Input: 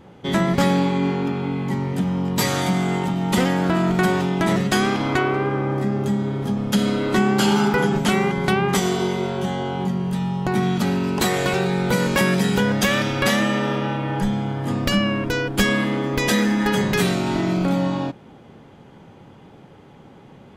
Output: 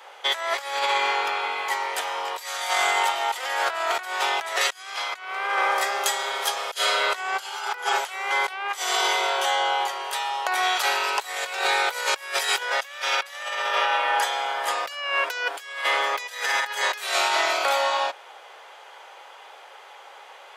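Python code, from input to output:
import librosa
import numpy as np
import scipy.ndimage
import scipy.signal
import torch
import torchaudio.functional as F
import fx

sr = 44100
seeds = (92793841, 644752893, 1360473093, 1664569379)

y = fx.high_shelf(x, sr, hz=2500.0, db=8.5, at=(4.61, 6.79))
y = scipy.signal.sosfilt(scipy.signal.bessel(8, 960.0, 'highpass', norm='mag', fs=sr, output='sos'), y)
y = fx.over_compress(y, sr, threshold_db=-32.0, ratio=-0.5)
y = F.gain(torch.from_numpy(y), 7.0).numpy()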